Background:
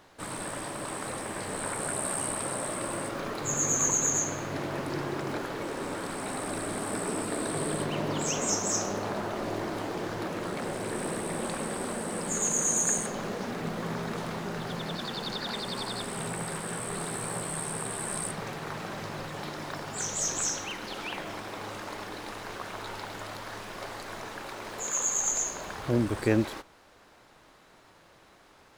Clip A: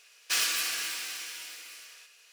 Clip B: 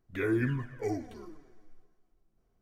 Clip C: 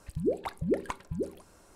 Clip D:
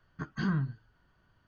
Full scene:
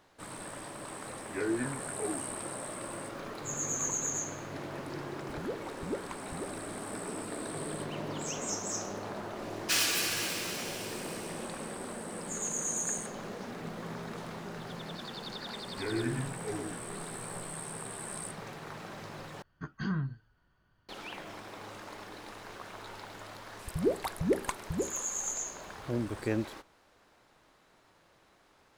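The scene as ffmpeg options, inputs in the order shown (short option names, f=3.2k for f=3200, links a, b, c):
-filter_complex "[2:a]asplit=2[a][b];[3:a]asplit=2[c][d];[0:a]volume=-7dB[e];[a]highpass=200,lowpass=2.1k[f];[1:a]acontrast=76[g];[b]aecho=1:1:117:0.631[h];[d]crystalizer=i=2:c=0[i];[e]asplit=2[j][k];[j]atrim=end=19.424[l];[4:a]atrim=end=1.47,asetpts=PTS-STARTPTS,volume=-3dB[m];[k]atrim=start=20.886[n];[f]atrim=end=2.61,asetpts=PTS-STARTPTS,volume=-2.5dB,afade=t=in:d=0.004:c=hsin,afade=t=out:st=2.606:d=0.004:c=hsin,adelay=1180[o];[c]atrim=end=1.75,asetpts=PTS-STARTPTS,volume=-9dB,afade=t=in:d=0.004:c=hsin,afade=t=out:st=1.746:d=0.004:c=hsin,adelay=229761S[p];[g]atrim=end=2.32,asetpts=PTS-STARTPTS,volume=-7.5dB,afade=t=in:d=0.004:c=hsin,afade=t=out:st=2.316:d=0.004:c=hsin,adelay=9390[q];[h]atrim=end=2.61,asetpts=PTS-STARTPTS,volume=-6dB,afade=t=in:d=0.004:c=hsin,afade=t=out:st=2.606:d=0.004:c=hsin,adelay=15630[r];[i]atrim=end=1.75,asetpts=PTS-STARTPTS,afade=t=in:d=0.004:c=hsin,afade=t=out:st=1.746:d=0.004:c=hsin,adelay=23590[s];[l][m]acrossfade=d=0.004:c1=hsin:c2=hsin[t];[t][n]acrossfade=d=0.004:c1=hsin:c2=hsin[u];[u][o][p][q][r][s]amix=inputs=6:normalize=0"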